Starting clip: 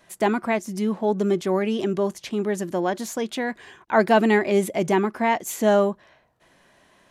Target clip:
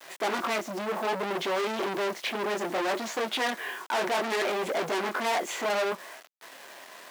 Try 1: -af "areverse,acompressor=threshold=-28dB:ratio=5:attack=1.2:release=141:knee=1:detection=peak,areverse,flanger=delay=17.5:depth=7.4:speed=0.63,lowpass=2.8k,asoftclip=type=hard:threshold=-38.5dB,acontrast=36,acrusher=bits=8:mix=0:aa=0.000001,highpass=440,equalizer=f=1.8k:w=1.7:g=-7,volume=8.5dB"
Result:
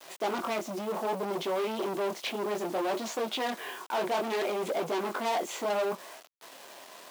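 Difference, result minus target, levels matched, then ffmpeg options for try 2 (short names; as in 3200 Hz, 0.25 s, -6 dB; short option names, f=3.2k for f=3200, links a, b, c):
compressor: peak gain reduction +6.5 dB; 2000 Hz band -4.5 dB
-af "areverse,acompressor=threshold=-20dB:ratio=5:attack=1.2:release=141:knee=1:detection=peak,areverse,flanger=delay=17.5:depth=7.4:speed=0.63,lowpass=2.8k,asoftclip=type=hard:threshold=-38.5dB,acontrast=36,acrusher=bits=8:mix=0:aa=0.000001,highpass=440,volume=8.5dB"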